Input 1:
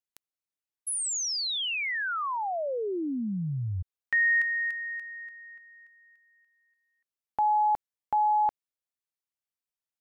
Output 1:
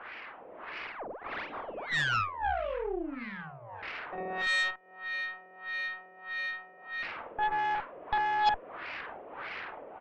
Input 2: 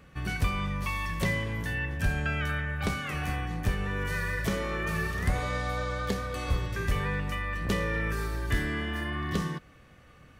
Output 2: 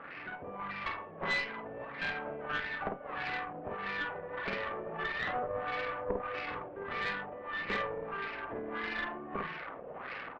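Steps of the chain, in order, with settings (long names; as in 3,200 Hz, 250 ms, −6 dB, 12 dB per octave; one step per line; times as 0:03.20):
linear delta modulator 16 kbit/s, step −31.5 dBFS
reverb reduction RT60 0.6 s
high-pass filter 340 Hz 12 dB per octave
automatic gain control gain up to 5 dB
auto-filter low-pass sine 1.6 Hz 540–2,400 Hz
double-tracking delay 50 ms −3 dB
harmonic generator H 3 −13 dB, 5 −19 dB, 6 −16 dB, 8 −32 dB, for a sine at −6.5 dBFS
level −9 dB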